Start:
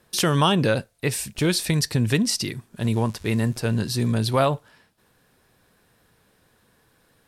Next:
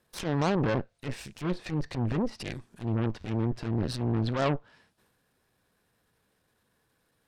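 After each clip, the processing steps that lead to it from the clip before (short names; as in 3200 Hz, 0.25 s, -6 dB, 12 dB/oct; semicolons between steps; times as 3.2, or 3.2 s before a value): treble ducked by the level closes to 1200 Hz, closed at -18 dBFS; added harmonics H 7 -24 dB, 8 -15 dB, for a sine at -9 dBFS; transient shaper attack -12 dB, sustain +6 dB; gain -5.5 dB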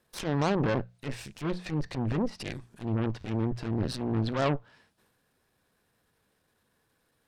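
notches 60/120/180 Hz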